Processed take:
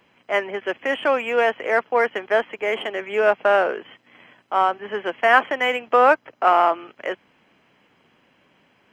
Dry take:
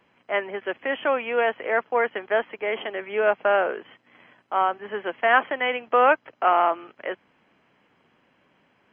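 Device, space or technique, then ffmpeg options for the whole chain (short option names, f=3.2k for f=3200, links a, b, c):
exciter from parts: -filter_complex "[0:a]asettb=1/sr,asplit=3[a][b][c];[a]atrim=end=5.964[d];[b]atrim=start=5.96:end=6.47,asetpts=PTS-STARTPTS,afade=t=in:d=0.004:c=qsin,afade=t=out:st=0.506:d=0.004:c=qsin,equalizer=f=3.1k:t=o:w=1.2:g=-4[e];[c]atrim=start=6.466[f];[d][e]acrossfade=d=0.004:c1=hsin:c2=qsin[g];[g][f]acrossfade=d=0.004:c1=qsin:c2=hsin,asplit=2[h][i];[i]highpass=2.1k,asoftclip=type=tanh:threshold=-37dB,volume=-4dB[j];[h][j]amix=inputs=2:normalize=0,volume=3.5dB"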